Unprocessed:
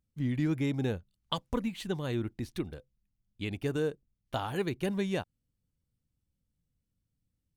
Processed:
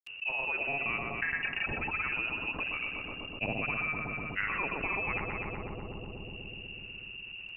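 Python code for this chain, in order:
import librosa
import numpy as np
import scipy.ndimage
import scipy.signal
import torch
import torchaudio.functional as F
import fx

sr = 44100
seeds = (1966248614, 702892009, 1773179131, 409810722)

p1 = fx.freq_invert(x, sr, carrier_hz=2800)
p2 = fx.rider(p1, sr, range_db=10, speed_s=0.5)
p3 = p1 + (p2 * 10.0 ** (-2.0 / 20.0))
p4 = fx.granulator(p3, sr, seeds[0], grain_ms=100.0, per_s=20.0, spray_ms=100.0, spread_st=0)
p5 = fx.echo_filtered(p4, sr, ms=124, feedback_pct=76, hz=1300.0, wet_db=-8.5)
p6 = fx.env_lowpass_down(p5, sr, base_hz=1300.0, full_db=-29.0)
y = fx.env_flatten(p6, sr, amount_pct=70)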